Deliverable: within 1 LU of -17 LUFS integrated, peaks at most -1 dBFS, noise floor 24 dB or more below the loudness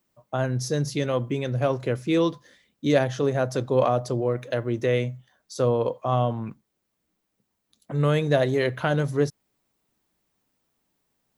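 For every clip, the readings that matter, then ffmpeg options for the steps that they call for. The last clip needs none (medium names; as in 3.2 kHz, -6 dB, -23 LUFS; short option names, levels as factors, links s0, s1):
loudness -25.0 LUFS; peak level -6.5 dBFS; loudness target -17.0 LUFS
-> -af "volume=2.51,alimiter=limit=0.891:level=0:latency=1"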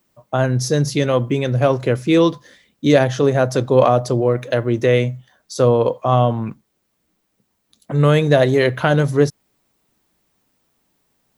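loudness -17.0 LUFS; peak level -1.0 dBFS; noise floor -70 dBFS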